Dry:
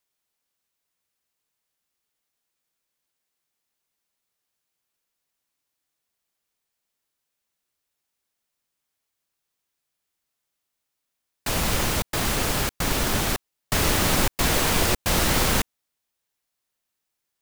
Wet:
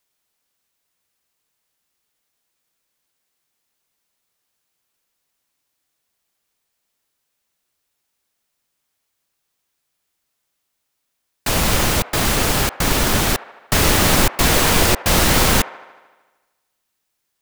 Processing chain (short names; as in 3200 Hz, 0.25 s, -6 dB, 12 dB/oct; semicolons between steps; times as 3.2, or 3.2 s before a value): band-limited delay 76 ms, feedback 66%, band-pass 1000 Hz, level -15 dB; gain +6.5 dB